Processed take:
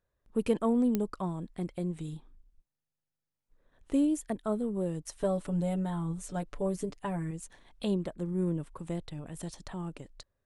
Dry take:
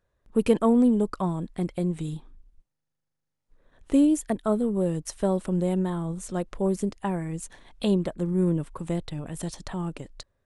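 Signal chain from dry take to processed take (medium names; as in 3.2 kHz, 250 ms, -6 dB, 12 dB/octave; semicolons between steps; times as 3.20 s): 5.20–7.31 s: comb 6.9 ms, depth 84%; clicks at 0.95 s, -9 dBFS; trim -7 dB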